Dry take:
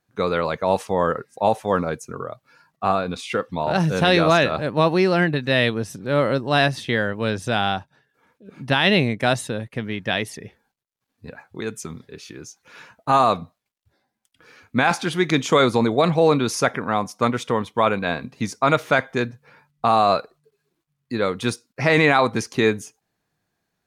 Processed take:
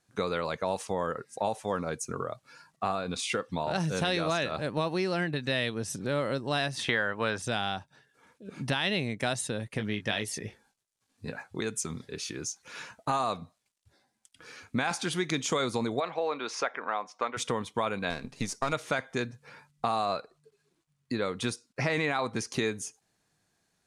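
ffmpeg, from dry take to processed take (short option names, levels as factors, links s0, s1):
-filter_complex "[0:a]asettb=1/sr,asplit=3[s0][s1][s2];[s0]atrim=end=6.794[s3];[s1]atrim=start=6.79:end=7.42,asetpts=PTS-STARTPTS,afade=t=in:d=0.004:c=qsin,afade=t=out:st=0.626:d=0.004:c=qsin,equalizer=f=1200:w=0.52:g=12.5[s4];[s2]atrim=start=7.416[s5];[s3][s4]acrossfade=d=0.004:c1=hsin:c2=qsin[s6];[s6][s5]acrossfade=d=0.004:c1=qsin:c2=hsin,asettb=1/sr,asplit=3[s7][s8][s9];[s7]atrim=end=9.764[s10];[s8]atrim=start=9.76:end=11.43,asetpts=PTS-STARTPTS,afade=t=in:d=0.004:c=qsin,afade=t=out:st=1.666:d=0.004:c=qsin,asplit=2[s11][s12];[s12]adelay=19,volume=0.447[s13];[s11][s13]amix=inputs=2:normalize=0,atrim=end_sample=73647[s14];[s9]atrim=start=11.426[s15];[s10][s14]acrossfade=d=0.004:c1=hsin:c2=qsin[s16];[s16][s15]acrossfade=d=0.004:c1=qsin:c2=hsin,asplit=3[s17][s18][s19];[s17]afade=t=out:st=15.99:d=0.02[s20];[s18]highpass=540,lowpass=2700,afade=t=in:st=15.99:d=0.02,afade=t=out:st=17.36:d=0.02[s21];[s19]afade=t=in:st=17.36:d=0.02[s22];[s20][s21][s22]amix=inputs=3:normalize=0,asettb=1/sr,asplit=3[s23][s24][s25];[s23]atrim=end=18.104[s26];[s24]atrim=start=18.1:end=18.73,asetpts=PTS-STARTPTS,afade=t=in:d=0.004:c=qsin,afade=t=out:st=0.626:d=0.004:c=qsin,aeval=exprs='if(lt(val(0),0),0.447*val(0),val(0))':c=same[s27];[s25]atrim=start=18.726[s28];[s26][s27]acrossfade=d=0.004:c1=hsin:c2=qsin[s29];[s29][s28]acrossfade=d=0.004:c1=qsin:c2=hsin,asettb=1/sr,asplit=3[s30][s31][s32];[s30]atrim=end=20.054[s33];[s31]atrim=start=20.05:end=22.53,asetpts=PTS-STARTPTS,afade=t=in:d=0.004:c=qsin,afade=t=out:st=2.476:d=0.004:c=qsin,highshelf=f=5300:g=-6[s34];[s32]atrim=start=22.526[s35];[s33][s34]acrossfade=d=0.004:c1=hsin:c2=qsin[s36];[s36][s35]acrossfade=d=0.004:c1=qsin:c2=hsin,lowpass=f=9400:w=0.5412,lowpass=f=9400:w=1.3066,aemphasis=mode=production:type=50fm,acompressor=threshold=0.0316:ratio=3"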